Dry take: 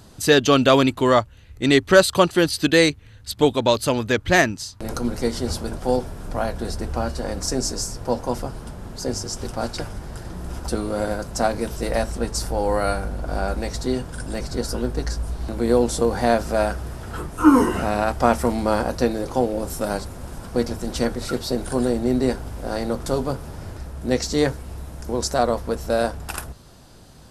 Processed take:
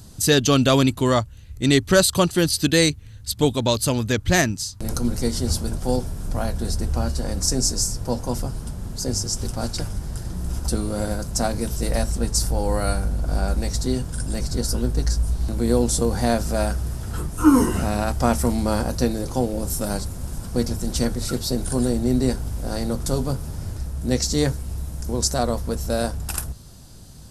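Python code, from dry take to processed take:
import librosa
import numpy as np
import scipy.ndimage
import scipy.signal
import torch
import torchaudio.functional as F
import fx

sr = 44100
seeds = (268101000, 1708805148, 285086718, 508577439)

y = fx.bass_treble(x, sr, bass_db=10, treble_db=11)
y = F.gain(torch.from_numpy(y), -4.5).numpy()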